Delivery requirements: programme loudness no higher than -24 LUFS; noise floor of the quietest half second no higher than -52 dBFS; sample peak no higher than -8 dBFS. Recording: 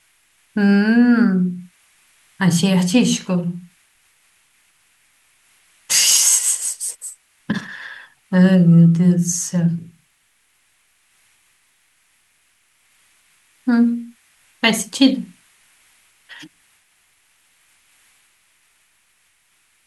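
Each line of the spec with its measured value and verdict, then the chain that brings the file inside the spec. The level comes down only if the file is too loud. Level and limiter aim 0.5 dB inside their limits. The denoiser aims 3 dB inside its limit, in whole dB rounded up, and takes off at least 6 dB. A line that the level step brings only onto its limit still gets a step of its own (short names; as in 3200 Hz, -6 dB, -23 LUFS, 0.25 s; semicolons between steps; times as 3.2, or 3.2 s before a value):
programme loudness -16.0 LUFS: fail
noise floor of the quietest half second -62 dBFS: OK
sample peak -2.0 dBFS: fail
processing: gain -8.5 dB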